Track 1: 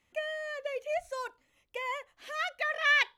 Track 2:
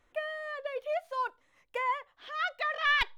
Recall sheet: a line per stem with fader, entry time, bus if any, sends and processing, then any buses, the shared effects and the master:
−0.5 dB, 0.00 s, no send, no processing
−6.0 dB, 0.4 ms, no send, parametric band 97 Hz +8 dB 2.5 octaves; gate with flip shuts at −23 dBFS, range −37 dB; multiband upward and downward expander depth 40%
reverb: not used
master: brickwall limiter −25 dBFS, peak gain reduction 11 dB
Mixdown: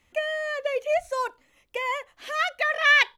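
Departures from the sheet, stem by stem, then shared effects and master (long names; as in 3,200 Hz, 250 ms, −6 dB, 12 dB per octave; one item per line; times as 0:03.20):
stem 1 −0.5 dB → +7.0 dB
master: missing brickwall limiter −25 dBFS, peak gain reduction 11 dB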